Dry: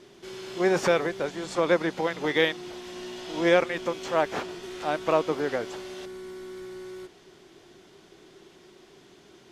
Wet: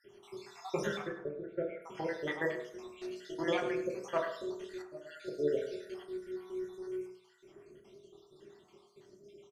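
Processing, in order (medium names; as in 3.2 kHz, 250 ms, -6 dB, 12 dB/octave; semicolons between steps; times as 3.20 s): random holes in the spectrogram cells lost 69%; 1.02–1.82 s: low-pass 1.7 kHz 24 dB/octave; feedback delay 104 ms, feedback 22%, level -12 dB; 4.82–5.30 s: fade in; reverberation RT60 0.60 s, pre-delay 3 ms, DRR -0.5 dB; trim -8.5 dB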